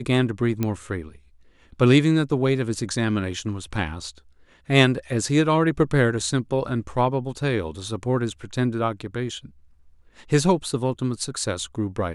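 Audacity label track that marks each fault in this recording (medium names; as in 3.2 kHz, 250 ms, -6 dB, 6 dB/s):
0.630000	0.630000	pop -11 dBFS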